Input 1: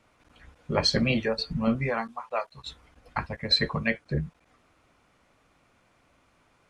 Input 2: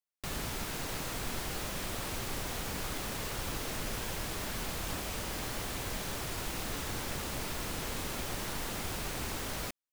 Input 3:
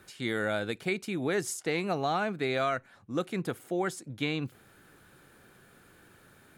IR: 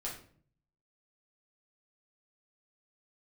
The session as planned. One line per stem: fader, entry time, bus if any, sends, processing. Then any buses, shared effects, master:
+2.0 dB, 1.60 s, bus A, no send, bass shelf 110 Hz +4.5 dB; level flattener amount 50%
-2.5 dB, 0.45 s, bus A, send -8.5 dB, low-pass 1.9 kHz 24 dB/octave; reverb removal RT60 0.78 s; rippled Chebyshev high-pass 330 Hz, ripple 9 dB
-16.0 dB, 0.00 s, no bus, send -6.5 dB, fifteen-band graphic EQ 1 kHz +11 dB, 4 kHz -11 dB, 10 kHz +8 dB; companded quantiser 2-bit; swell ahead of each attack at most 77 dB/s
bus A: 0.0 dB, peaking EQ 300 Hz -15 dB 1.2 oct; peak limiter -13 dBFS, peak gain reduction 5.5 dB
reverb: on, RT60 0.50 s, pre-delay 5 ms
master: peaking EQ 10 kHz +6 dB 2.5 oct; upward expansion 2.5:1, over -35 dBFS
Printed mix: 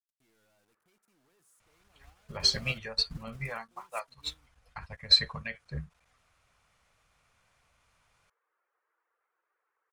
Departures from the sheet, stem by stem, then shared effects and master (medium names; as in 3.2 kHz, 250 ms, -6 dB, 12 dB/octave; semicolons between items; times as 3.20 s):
stem 3: missing swell ahead of each attack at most 77 dB/s; reverb return -8.5 dB